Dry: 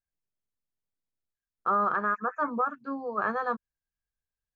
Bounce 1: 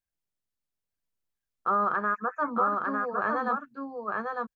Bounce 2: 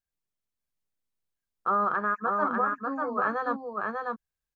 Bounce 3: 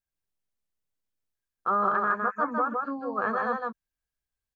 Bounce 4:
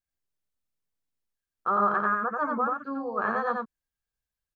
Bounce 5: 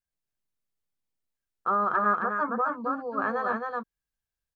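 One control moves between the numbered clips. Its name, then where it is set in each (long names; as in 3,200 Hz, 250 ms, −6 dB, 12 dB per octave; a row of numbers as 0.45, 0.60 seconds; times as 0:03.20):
single-tap delay, delay time: 902, 595, 158, 88, 267 milliseconds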